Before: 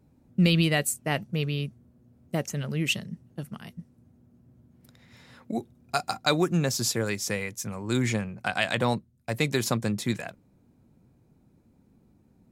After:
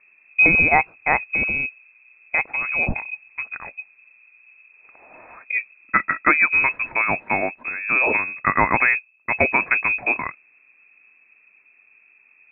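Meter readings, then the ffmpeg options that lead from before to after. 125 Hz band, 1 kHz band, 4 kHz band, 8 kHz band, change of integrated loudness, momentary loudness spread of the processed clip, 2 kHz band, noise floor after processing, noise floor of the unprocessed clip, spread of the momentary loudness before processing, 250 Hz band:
-8.0 dB, +11.0 dB, under -40 dB, under -40 dB, +8.5 dB, 15 LU, +15.0 dB, -57 dBFS, -63 dBFS, 15 LU, -4.0 dB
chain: -af "crystalizer=i=7.5:c=0,lowpass=f=2300:t=q:w=0.5098,lowpass=f=2300:t=q:w=0.6013,lowpass=f=2300:t=q:w=0.9,lowpass=f=2300:t=q:w=2.563,afreqshift=-2700,volume=1.88"

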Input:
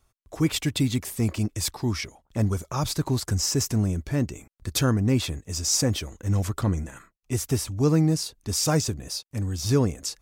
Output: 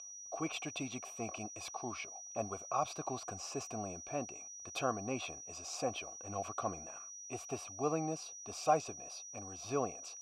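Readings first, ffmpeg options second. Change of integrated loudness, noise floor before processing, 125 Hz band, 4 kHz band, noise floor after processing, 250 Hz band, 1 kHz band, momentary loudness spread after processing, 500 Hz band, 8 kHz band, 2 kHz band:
-14.0 dB, -71 dBFS, -25.0 dB, -17.0 dB, -50 dBFS, -18.0 dB, -1.0 dB, 9 LU, -8.5 dB, -11.5 dB, -10.0 dB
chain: -filter_complex "[0:a]aeval=exprs='val(0)+0.0501*sin(2*PI*5800*n/s)':c=same,asplit=3[s0][s1][s2];[s0]bandpass=f=730:t=q:w=8,volume=1[s3];[s1]bandpass=f=1090:t=q:w=8,volume=0.501[s4];[s2]bandpass=f=2440:t=q:w=8,volume=0.355[s5];[s3][s4][s5]amix=inputs=3:normalize=0,volume=1.78"

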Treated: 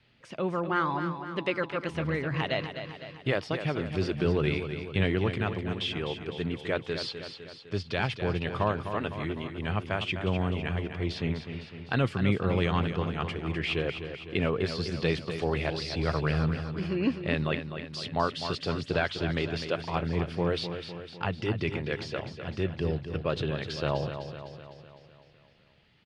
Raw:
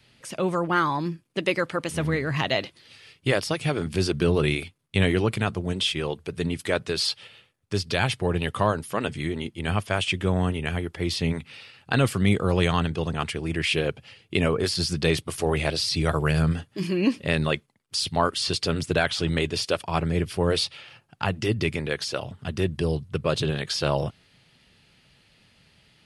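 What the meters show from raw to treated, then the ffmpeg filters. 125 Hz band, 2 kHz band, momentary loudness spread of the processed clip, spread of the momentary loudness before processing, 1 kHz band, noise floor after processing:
-4.0 dB, -5.0 dB, 8 LU, 8 LU, -4.5 dB, -54 dBFS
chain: -filter_complex "[0:a]lowpass=3500,asplit=2[s0][s1];[s1]aecho=0:1:253|506|759|1012|1265|1518|1771:0.355|0.199|0.111|0.0623|0.0349|0.0195|0.0109[s2];[s0][s2]amix=inputs=2:normalize=0,volume=0.562"

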